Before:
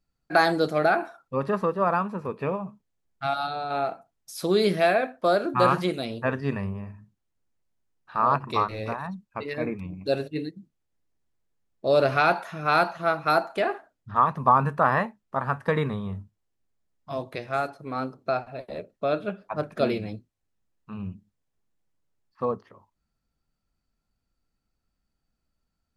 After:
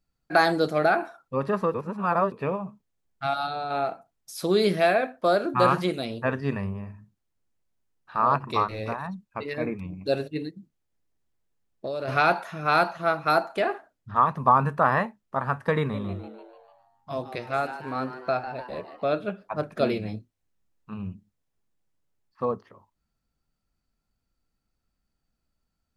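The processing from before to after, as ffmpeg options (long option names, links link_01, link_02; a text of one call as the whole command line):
ffmpeg -i in.wav -filter_complex "[0:a]asplit=3[link_01][link_02][link_03];[link_01]afade=type=out:start_time=10.37:duration=0.02[link_04];[link_02]acompressor=threshold=-28dB:ratio=6:attack=3.2:release=140:knee=1:detection=peak,afade=type=in:start_time=10.37:duration=0.02,afade=type=out:start_time=12.07:duration=0.02[link_05];[link_03]afade=type=in:start_time=12.07:duration=0.02[link_06];[link_04][link_05][link_06]amix=inputs=3:normalize=0,asettb=1/sr,asplit=3[link_07][link_08][link_09];[link_07]atrim=end=15.794[link_10];[link_08]atrim=start=15.79:end=19.15,asetpts=PTS-STARTPTS,afade=type=in:duration=0.004:curve=qsin,afade=type=out:start_time=3.356:duration=0.004:curve=qsin,asplit=7[link_11][link_12][link_13][link_14][link_15][link_16][link_17];[link_12]adelay=148,afreqshift=120,volume=-11.5dB[link_18];[link_13]adelay=296,afreqshift=240,volume=-16.9dB[link_19];[link_14]adelay=444,afreqshift=360,volume=-22.2dB[link_20];[link_15]adelay=592,afreqshift=480,volume=-27.6dB[link_21];[link_16]adelay=740,afreqshift=600,volume=-32.9dB[link_22];[link_17]adelay=888,afreqshift=720,volume=-38.3dB[link_23];[link_11][link_18][link_19][link_20][link_21][link_22][link_23]amix=inputs=7:normalize=0,atrim=end_sample=148176[link_24];[link_09]atrim=start=19.146[link_25];[link_10][link_24]acrossfade=duration=0.004:curve1=hsin:curve2=qsin[link_26];[link_26][link_25]acrossfade=duration=0.004:curve1=qsin:curve2=hsin,asettb=1/sr,asplit=3[link_27][link_28][link_29];[link_27]atrim=end=20.024[link_30];[link_28]atrim=start=20.02:end=20.94,asetpts=PTS-STARTPTS,afade=type=in:duration=0.004:curve=qsin,afade=type=out:start_time=0.916:duration=0.004:curve=qsin,asplit=2[link_31][link_32];[link_32]adelay=28,volume=-7dB[link_33];[link_31][link_33]amix=inputs=2:normalize=0,atrim=end_sample=40572[link_34];[link_29]atrim=start=20.936[link_35];[link_30][link_34]acrossfade=duration=0.004:curve1=hsin:curve2=qsin[link_36];[link_36][link_35]acrossfade=duration=0.004:curve1=qsin:curve2=hsin,asplit=3[link_37][link_38][link_39];[link_37]atrim=end=1.742[link_40];[link_38]atrim=start=1.738:end=2.322,asetpts=PTS-STARTPTS,areverse[link_41];[link_39]atrim=start=2.318[link_42];[link_40][link_41]acrossfade=duration=0.004:curve1=hsin:curve2=hsin[link_43];[link_43][link_42]acrossfade=duration=0.004:curve1=hsin:curve2=hsin" out.wav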